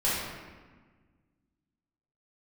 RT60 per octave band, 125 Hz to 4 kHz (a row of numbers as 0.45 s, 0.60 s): 2.2 s, 2.1 s, 1.5 s, 1.4 s, 1.3 s, 0.95 s